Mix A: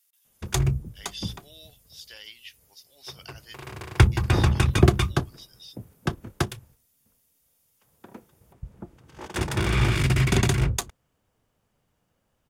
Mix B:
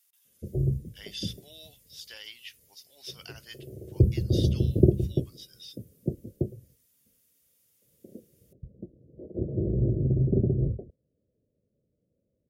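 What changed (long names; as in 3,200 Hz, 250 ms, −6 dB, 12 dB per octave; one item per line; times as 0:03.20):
background: add Butterworth low-pass 590 Hz 72 dB per octave
master: add high-pass filter 110 Hz 6 dB per octave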